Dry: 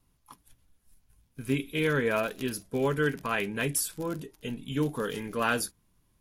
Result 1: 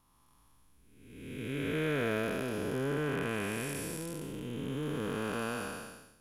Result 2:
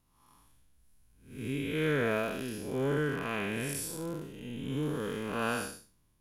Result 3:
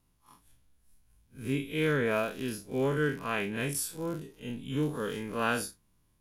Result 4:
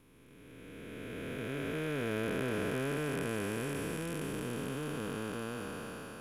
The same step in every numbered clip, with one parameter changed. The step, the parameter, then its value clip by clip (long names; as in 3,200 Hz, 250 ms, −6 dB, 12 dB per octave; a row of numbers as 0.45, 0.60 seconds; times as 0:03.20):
spectrum smeared in time, width: 581, 231, 87, 1,590 milliseconds